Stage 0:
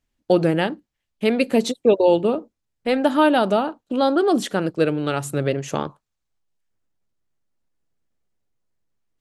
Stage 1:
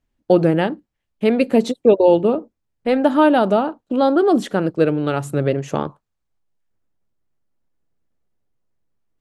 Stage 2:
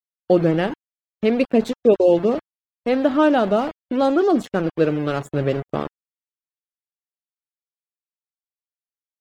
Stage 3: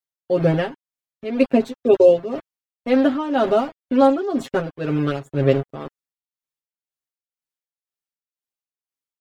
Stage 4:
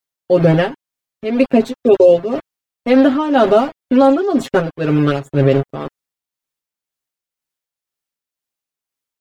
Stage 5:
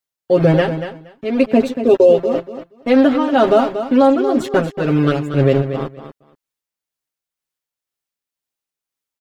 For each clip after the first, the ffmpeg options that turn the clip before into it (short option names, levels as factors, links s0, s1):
-af "highshelf=f=2100:g=-9,volume=1.5"
-af "bandreject=f=890:w=12,aeval=exprs='val(0)*gte(abs(val(0)),0.0501)':c=same,afftdn=nr=23:nf=-40,volume=0.794"
-af "tremolo=f=2:d=0.77,aecho=1:1:7.5:0.91"
-af "alimiter=level_in=2.51:limit=0.891:release=50:level=0:latency=1,volume=0.891"
-af "aecho=1:1:235|470:0.316|0.0506,volume=0.891"